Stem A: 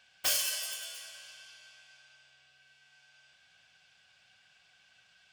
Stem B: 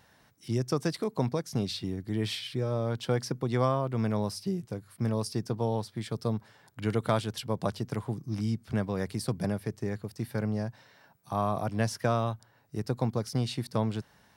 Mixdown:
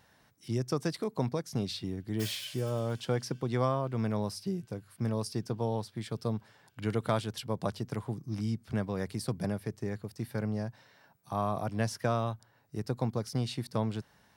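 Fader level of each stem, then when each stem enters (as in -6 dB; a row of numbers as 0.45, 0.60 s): -14.0, -2.5 dB; 1.95, 0.00 s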